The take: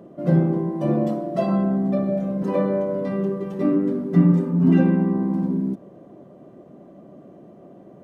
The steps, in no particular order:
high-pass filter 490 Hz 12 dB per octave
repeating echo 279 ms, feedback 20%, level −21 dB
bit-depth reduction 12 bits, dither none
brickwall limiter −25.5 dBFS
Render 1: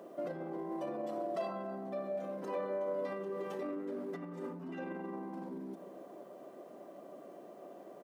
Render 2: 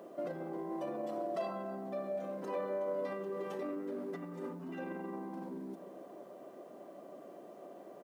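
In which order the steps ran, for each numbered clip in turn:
repeating echo, then bit-depth reduction, then brickwall limiter, then high-pass filter
repeating echo, then brickwall limiter, then high-pass filter, then bit-depth reduction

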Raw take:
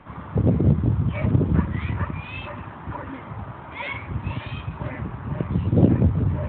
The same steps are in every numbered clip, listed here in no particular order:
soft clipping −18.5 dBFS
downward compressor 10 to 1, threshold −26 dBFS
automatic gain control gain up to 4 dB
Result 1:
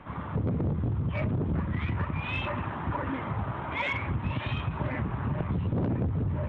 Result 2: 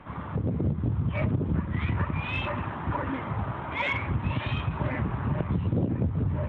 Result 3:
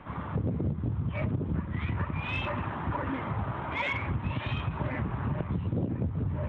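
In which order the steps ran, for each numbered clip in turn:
soft clipping, then automatic gain control, then downward compressor
downward compressor, then soft clipping, then automatic gain control
automatic gain control, then downward compressor, then soft clipping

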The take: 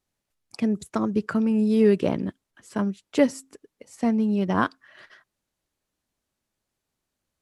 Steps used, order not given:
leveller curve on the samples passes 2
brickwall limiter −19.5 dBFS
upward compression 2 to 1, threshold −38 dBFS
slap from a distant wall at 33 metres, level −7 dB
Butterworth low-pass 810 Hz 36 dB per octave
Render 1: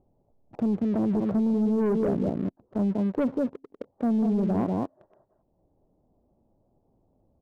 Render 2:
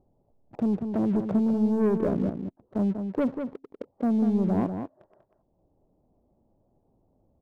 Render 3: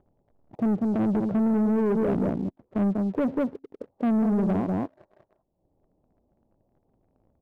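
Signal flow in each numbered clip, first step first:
Butterworth low-pass, then upward compression, then slap from a distant wall, then leveller curve on the samples, then brickwall limiter
Butterworth low-pass, then upward compression, then leveller curve on the samples, then brickwall limiter, then slap from a distant wall
slap from a distant wall, then upward compression, then brickwall limiter, then Butterworth low-pass, then leveller curve on the samples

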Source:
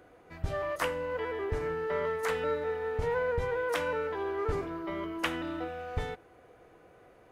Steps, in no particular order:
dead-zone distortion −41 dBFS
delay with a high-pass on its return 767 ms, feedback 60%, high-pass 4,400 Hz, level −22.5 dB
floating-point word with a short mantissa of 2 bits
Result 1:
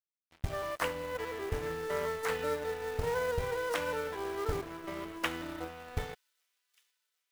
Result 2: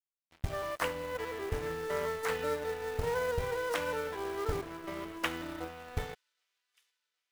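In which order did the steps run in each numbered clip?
dead-zone distortion, then floating-point word with a short mantissa, then delay with a high-pass on its return
dead-zone distortion, then delay with a high-pass on its return, then floating-point word with a short mantissa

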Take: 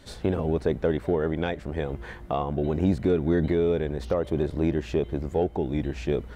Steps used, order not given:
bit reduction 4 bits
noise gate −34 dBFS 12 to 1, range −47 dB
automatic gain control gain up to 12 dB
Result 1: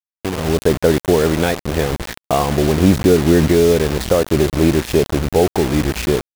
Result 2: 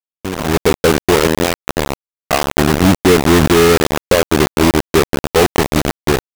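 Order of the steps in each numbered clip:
automatic gain control, then bit reduction, then noise gate
bit reduction, then automatic gain control, then noise gate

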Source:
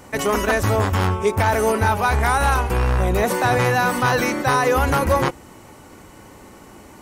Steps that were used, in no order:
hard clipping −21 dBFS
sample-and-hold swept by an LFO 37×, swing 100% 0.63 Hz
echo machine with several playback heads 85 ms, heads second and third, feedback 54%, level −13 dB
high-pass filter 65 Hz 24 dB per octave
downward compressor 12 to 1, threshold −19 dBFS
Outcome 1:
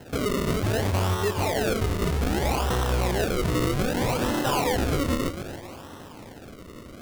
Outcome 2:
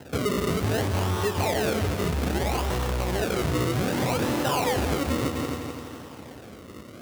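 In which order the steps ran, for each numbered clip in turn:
high-pass filter, then downward compressor, then hard clipping, then echo machine with several playback heads, then sample-and-hold swept by an LFO
sample-and-hold swept by an LFO, then echo machine with several playback heads, then downward compressor, then hard clipping, then high-pass filter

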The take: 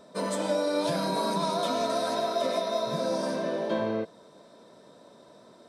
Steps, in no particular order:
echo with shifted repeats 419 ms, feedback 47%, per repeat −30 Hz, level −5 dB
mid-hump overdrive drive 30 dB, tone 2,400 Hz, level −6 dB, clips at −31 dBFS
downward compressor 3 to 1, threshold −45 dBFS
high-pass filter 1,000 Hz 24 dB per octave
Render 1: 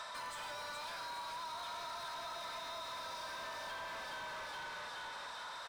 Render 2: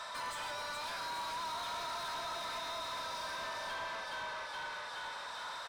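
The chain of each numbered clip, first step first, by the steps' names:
echo with shifted repeats, then high-pass filter, then mid-hump overdrive, then downward compressor
echo with shifted repeats, then downward compressor, then high-pass filter, then mid-hump overdrive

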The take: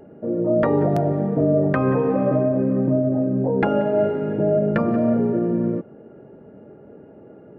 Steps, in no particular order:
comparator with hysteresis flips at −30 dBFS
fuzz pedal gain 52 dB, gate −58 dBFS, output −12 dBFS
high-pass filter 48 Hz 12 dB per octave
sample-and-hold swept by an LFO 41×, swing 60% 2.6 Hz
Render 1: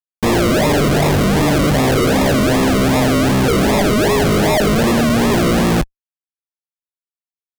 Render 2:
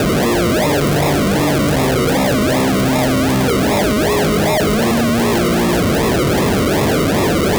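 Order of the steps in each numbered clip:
comparator with hysteresis, then high-pass filter, then sample-and-hold swept by an LFO, then fuzz pedal
sample-and-hold swept by an LFO, then fuzz pedal, then comparator with hysteresis, then high-pass filter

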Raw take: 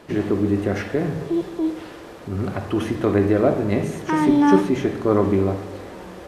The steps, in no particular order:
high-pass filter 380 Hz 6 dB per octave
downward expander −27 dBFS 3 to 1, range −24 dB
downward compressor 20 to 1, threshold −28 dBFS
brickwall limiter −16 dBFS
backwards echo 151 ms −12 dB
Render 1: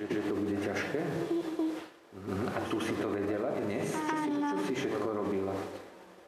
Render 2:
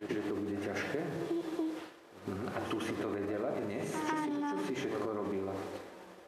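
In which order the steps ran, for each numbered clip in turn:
downward expander, then backwards echo, then brickwall limiter, then high-pass filter, then downward compressor
backwards echo, then brickwall limiter, then downward expander, then downward compressor, then high-pass filter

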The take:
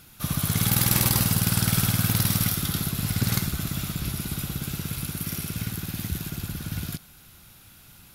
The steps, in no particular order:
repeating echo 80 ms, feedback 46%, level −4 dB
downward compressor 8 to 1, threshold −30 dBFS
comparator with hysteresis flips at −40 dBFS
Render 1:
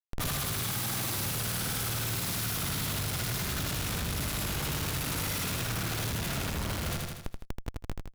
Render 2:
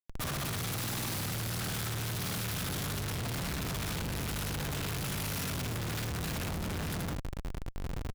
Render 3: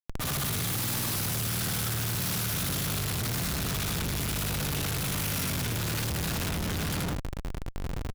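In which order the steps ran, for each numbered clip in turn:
comparator with hysteresis, then repeating echo, then downward compressor
repeating echo, then downward compressor, then comparator with hysteresis
repeating echo, then comparator with hysteresis, then downward compressor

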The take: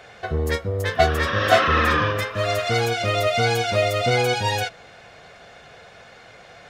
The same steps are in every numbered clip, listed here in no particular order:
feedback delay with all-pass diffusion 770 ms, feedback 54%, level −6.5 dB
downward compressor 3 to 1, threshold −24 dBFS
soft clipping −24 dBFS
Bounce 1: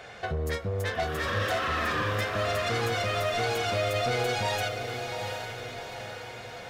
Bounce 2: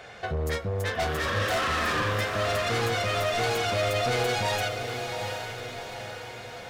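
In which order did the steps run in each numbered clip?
downward compressor, then soft clipping, then feedback delay with all-pass diffusion
soft clipping, then downward compressor, then feedback delay with all-pass diffusion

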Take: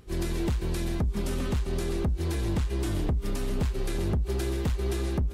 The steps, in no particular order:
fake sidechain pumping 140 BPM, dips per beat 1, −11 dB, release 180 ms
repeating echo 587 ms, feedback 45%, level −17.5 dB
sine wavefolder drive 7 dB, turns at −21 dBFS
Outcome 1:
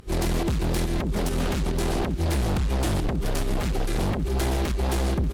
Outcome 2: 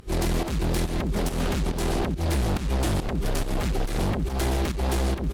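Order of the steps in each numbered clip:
fake sidechain pumping, then sine wavefolder, then repeating echo
sine wavefolder, then repeating echo, then fake sidechain pumping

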